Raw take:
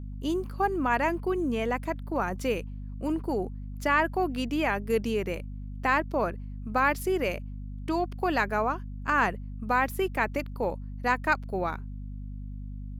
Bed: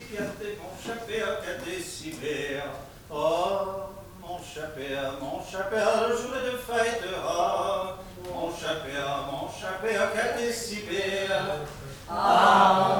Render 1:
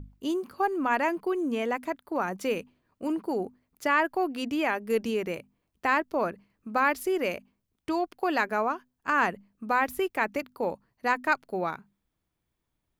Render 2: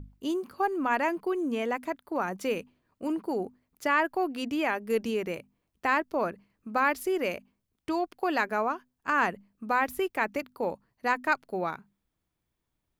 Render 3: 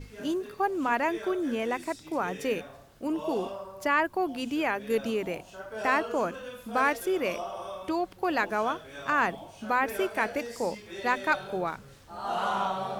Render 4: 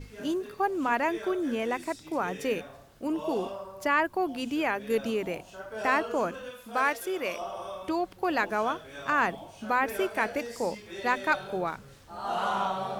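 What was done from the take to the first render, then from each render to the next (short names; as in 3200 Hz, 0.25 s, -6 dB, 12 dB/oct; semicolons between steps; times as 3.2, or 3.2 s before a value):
notches 50/100/150/200/250 Hz
gain -1 dB
add bed -11 dB
6.51–7.41 low shelf 360 Hz -9 dB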